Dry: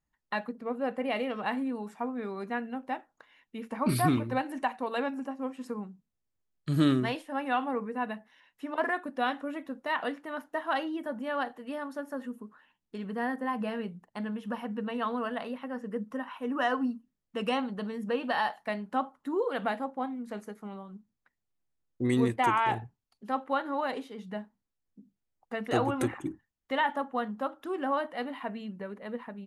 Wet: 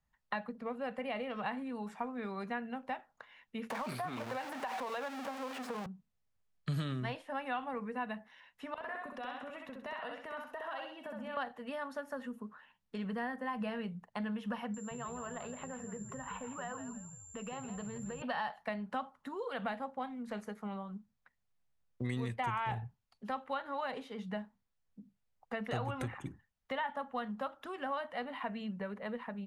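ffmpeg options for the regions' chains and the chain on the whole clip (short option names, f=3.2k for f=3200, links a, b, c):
-filter_complex "[0:a]asettb=1/sr,asplit=3[a][b][c];[a]atrim=end=3.704[d];[b]atrim=start=3.7:end=5.86,asetpts=PTS-STARTPTS,afade=t=in:d=0.004:c=qsin,afade=t=out:st=2.156:d=0.004:c=qsin,aeval=exprs='val(0)+0.5*0.0266*sgn(val(0))':c=same,highpass=350,acompressor=threshold=-30dB:ratio=6:attack=3.2:release=140:knee=1:detection=peak[e];[c]atrim=start=5.856[f];[d][e]acrossfade=d=0.004:c1=hsin:c2=qsin[g];[g][f]acrossfade=d=0.004:c1=qsin:c2=hsin,asettb=1/sr,asplit=3[h][i][j];[h]atrim=end=8.744[k];[i]atrim=start=8.74:end=11.37,asetpts=PTS-STARTPTS,afade=t=in:d=0.004:c=qsin,afade=t=out:st=2.626:d=0.004:c=qsin,equalizer=f=2.7k:t=o:w=0.2:g=5,acompressor=threshold=-41dB:ratio=10:attack=3.2:release=140:knee=1:detection=peak,aecho=1:1:65|130|195|260|325:0.708|0.269|0.102|0.0388|0.0148,atrim=end_sample=115983[l];[j]atrim=start=11.366[m];[k][l]acrossfade=d=0.004:c1=hsin:c2=qsin[n];[n][m]acrossfade=d=0.004:c1=qsin:c2=hsin,asettb=1/sr,asplit=3[o][p][q];[o]atrim=end=14.744[r];[p]atrim=start=14.74:end=18.22,asetpts=PTS-STARTPTS,afade=t=in:d=0.004:c=qsin,afade=t=out:st=3.476:d=0.004:c=qsin,acompressor=threshold=-40dB:ratio=12:attack=3.2:release=140:knee=1:detection=peak,aeval=exprs='val(0)+0.00501*sin(2*PI*7300*n/s)':c=same,asplit=5[s][t][u][v][w];[t]adelay=165,afreqshift=-71,volume=-10dB[x];[u]adelay=330,afreqshift=-142,volume=-19.6dB[y];[v]adelay=495,afreqshift=-213,volume=-29.3dB[z];[w]adelay=660,afreqshift=-284,volume=-38.9dB[aa];[s][x][y][z][aa]amix=inputs=5:normalize=0,atrim=end_sample=153468[ab];[q]atrim=start=18.216[ac];[r][ab]acrossfade=d=0.004:c1=hsin:c2=qsin[ad];[ad][ac]acrossfade=d=0.004:c1=qsin:c2=hsin,acrossover=split=160|2000[ae][af][ag];[ae]acompressor=threshold=-42dB:ratio=4[ah];[af]acompressor=threshold=-39dB:ratio=4[ai];[ag]acompressor=threshold=-50dB:ratio=4[aj];[ah][ai][aj]amix=inputs=3:normalize=0,lowpass=f=3.8k:p=1,equalizer=f=320:w=2.8:g=-14,volume=3.5dB"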